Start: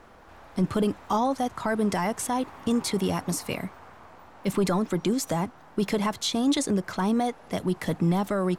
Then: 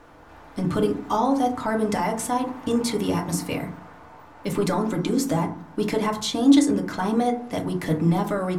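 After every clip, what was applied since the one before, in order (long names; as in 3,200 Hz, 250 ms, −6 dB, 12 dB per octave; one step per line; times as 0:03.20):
feedback delay network reverb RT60 0.49 s, low-frequency decay 1.45×, high-frequency decay 0.4×, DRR 1.5 dB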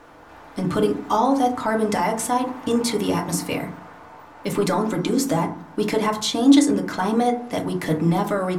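low-shelf EQ 150 Hz −7.5 dB
level +3.5 dB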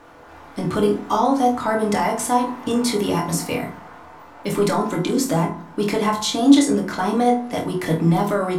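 flutter between parallel walls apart 4.2 metres, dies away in 0.25 s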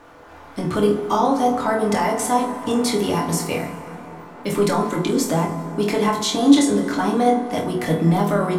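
dense smooth reverb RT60 4.2 s, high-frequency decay 0.4×, pre-delay 0 ms, DRR 9.5 dB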